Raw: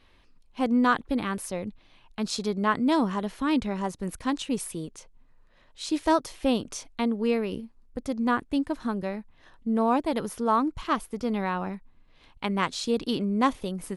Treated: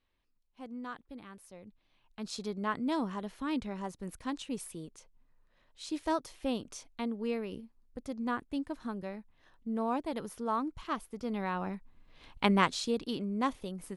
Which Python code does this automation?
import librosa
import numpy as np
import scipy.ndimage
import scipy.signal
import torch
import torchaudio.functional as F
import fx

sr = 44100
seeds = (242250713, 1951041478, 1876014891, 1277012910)

y = fx.gain(x, sr, db=fx.line((1.46, -20.0), (2.39, -9.0), (11.14, -9.0), (12.47, 3.0), (13.04, -8.0)))